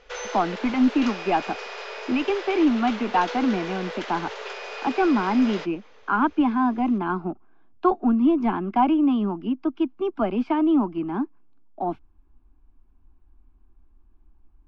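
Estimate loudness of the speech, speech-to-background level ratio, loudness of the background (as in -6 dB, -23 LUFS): -24.0 LUFS, 10.5 dB, -34.5 LUFS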